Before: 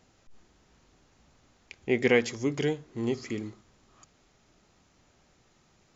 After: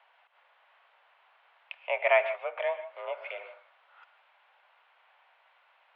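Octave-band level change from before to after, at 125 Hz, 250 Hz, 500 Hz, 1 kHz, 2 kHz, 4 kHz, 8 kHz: under -40 dB, under -40 dB, -1.0 dB, +9.0 dB, +1.0 dB, -5.5 dB, n/a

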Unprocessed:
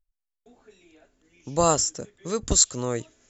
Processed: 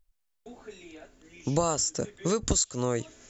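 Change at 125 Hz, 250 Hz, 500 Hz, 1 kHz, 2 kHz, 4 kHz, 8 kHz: 0.0 dB, 0.0 dB, -3.0 dB, -6.0 dB, -1.5 dB, -5.5 dB, n/a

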